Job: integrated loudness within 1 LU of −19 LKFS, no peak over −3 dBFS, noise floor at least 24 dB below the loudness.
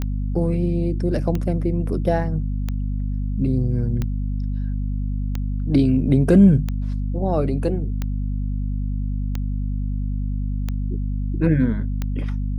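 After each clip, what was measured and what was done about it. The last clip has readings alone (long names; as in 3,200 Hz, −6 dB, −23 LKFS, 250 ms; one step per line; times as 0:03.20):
number of clicks 10; mains hum 50 Hz; hum harmonics up to 250 Hz; level of the hum −21 dBFS; integrated loudness −22.5 LKFS; sample peak −3.0 dBFS; target loudness −19.0 LKFS
→ click removal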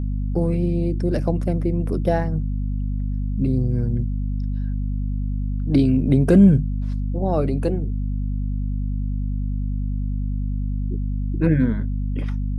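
number of clicks 0; mains hum 50 Hz; hum harmonics up to 250 Hz; level of the hum −21 dBFS
→ mains-hum notches 50/100/150/200/250 Hz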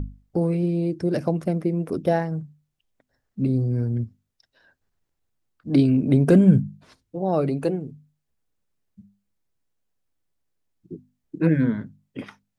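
mains hum none found; integrated loudness −22.5 LKFS; sample peak −4.5 dBFS; target loudness −19.0 LKFS
→ level +3.5 dB
brickwall limiter −3 dBFS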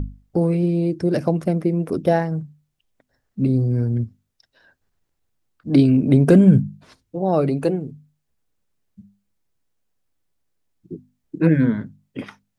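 integrated loudness −19.0 LKFS; sample peak −3.0 dBFS; background noise floor −75 dBFS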